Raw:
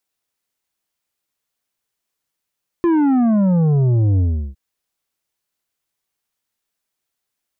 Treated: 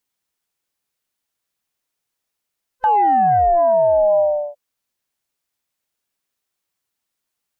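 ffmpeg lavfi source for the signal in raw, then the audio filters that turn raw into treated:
-f lavfi -i "aevalsrc='0.224*clip((1.71-t)/0.36,0,1)*tanh(2.51*sin(2*PI*350*1.71/log(65/350)*(exp(log(65/350)*t/1.71)-1)))/tanh(2.51)':d=1.71:s=44100"
-af "afftfilt=real='real(if(lt(b,1008),b+24*(1-2*mod(floor(b/24),2)),b),0)':imag='imag(if(lt(b,1008),b+24*(1-2*mod(floor(b/24),2)),b),0)':win_size=2048:overlap=0.75"

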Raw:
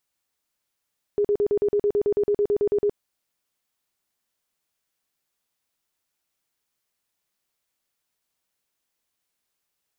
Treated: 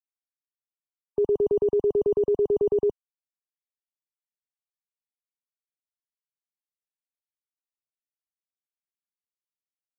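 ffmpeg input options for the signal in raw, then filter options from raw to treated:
-f lavfi -i "aevalsrc='0.133*sin(2*PI*411*mod(t,0.11))*lt(mod(t,0.11),27/411)':d=1.76:s=44100"
-filter_complex "[0:a]afftfilt=real='re*gte(hypot(re,im),0.01)':imag='im*gte(hypot(re,im),0.01)':win_size=1024:overlap=0.75,acrossover=split=120[s0][s1];[s0]acrusher=samples=15:mix=1:aa=0.000001[s2];[s2][s1]amix=inputs=2:normalize=0"

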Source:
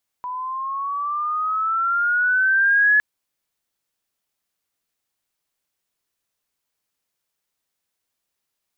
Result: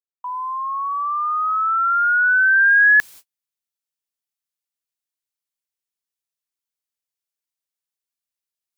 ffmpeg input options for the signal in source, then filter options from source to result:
-f lavfi -i "aevalsrc='pow(10,(-12+14*(t/2.76-1))/20)*sin(2*PI*988*2.76/(9.5*log(2)/12)*(exp(9.5*log(2)/12*t/2.76)-1))':d=2.76:s=44100"
-af "areverse,acompressor=mode=upward:threshold=0.0282:ratio=2.5,areverse,highshelf=f=2100:g=9,agate=range=0.00631:threshold=0.0141:ratio=16:detection=peak"

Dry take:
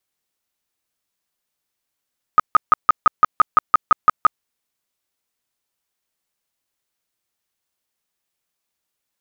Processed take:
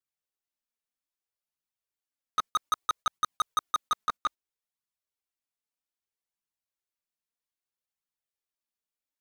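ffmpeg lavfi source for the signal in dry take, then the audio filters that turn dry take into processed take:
-f lavfi -i "aevalsrc='0.501*sin(2*PI*1250*mod(t,0.17))*lt(mod(t,0.17),21/1250)':d=2.04:s=44100"
-af "flanger=delay=0.6:depth=4.1:regen=-2:speed=0.62:shape=triangular,agate=range=0.251:threshold=0.0355:ratio=16:detection=peak,asoftclip=type=tanh:threshold=0.0794"

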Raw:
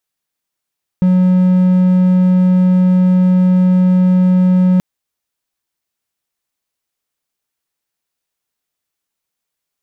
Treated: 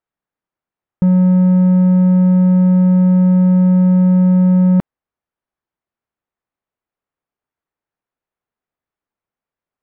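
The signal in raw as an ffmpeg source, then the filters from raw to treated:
-f lavfi -i "aevalsrc='0.531*(1-4*abs(mod(183*t+0.25,1)-0.5))':d=3.78:s=44100"
-af "lowpass=1500"

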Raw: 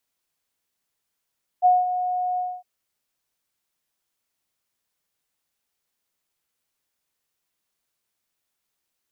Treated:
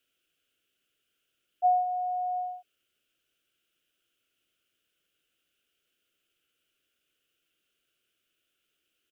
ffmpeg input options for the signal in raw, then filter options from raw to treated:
-f lavfi -i "aevalsrc='0.266*sin(2*PI*727*t)':d=1.008:s=44100,afade=t=in:d=0.035,afade=t=out:st=0.035:d=0.196:silence=0.299,afade=t=out:st=0.76:d=0.248"
-af "firequalizer=gain_entry='entry(220,0);entry(320,8);entry(450,5);entry(640,0);entry(920,-18);entry(1400,8);entry(1900,-2);entry(2900,13);entry(4100,-3)':delay=0.05:min_phase=1"

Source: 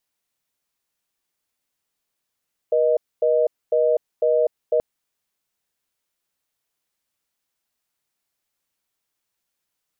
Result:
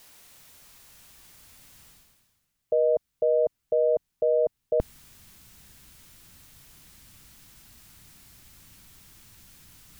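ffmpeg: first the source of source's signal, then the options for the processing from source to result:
-f lavfi -i "aevalsrc='0.126*(sin(2*PI*480*t)+sin(2*PI*620*t))*clip(min(mod(t,0.5),0.25-mod(t,0.5))/0.005,0,1)':d=2.08:s=44100"
-af "asubboost=boost=8:cutoff=180,areverse,acompressor=mode=upward:threshold=0.0282:ratio=2.5,areverse"

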